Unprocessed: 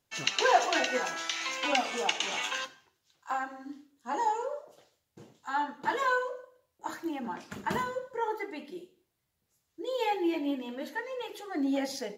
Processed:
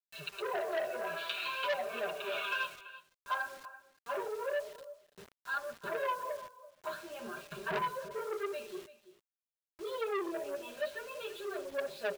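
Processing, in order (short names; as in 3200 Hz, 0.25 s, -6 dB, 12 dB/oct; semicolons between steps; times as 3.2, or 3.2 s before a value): flange 0.25 Hz, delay 6.1 ms, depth 6.8 ms, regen -70%; treble ducked by the level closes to 720 Hz, closed at -29 dBFS; dynamic EQ 650 Hz, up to +3 dB, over -44 dBFS, Q 2.3; AGC gain up to 10.5 dB; ripple EQ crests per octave 1.5, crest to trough 8 dB; flange 0.52 Hz, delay 4.3 ms, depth 9.9 ms, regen +3%; fixed phaser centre 1300 Hz, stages 8; comb 5 ms, depth 79%; bit-crush 8-bit; echo 0.336 s -16.5 dB; core saturation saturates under 1800 Hz; gain -4 dB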